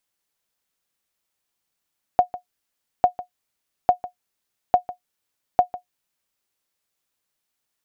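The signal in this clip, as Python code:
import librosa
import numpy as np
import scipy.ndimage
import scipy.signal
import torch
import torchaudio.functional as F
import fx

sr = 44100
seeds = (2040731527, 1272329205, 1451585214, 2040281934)

y = fx.sonar_ping(sr, hz=722.0, decay_s=0.11, every_s=0.85, pings=5, echo_s=0.15, echo_db=-16.5, level_db=-5.0)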